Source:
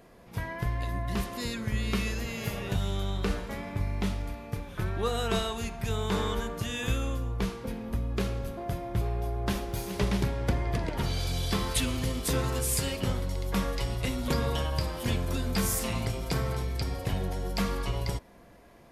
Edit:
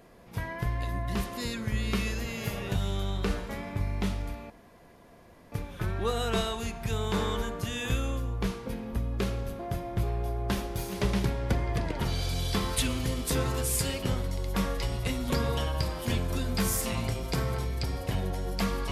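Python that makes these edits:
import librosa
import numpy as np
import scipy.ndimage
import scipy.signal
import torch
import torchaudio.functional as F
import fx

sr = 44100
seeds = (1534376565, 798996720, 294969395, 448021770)

y = fx.edit(x, sr, fx.insert_room_tone(at_s=4.5, length_s=1.02), tone=tone)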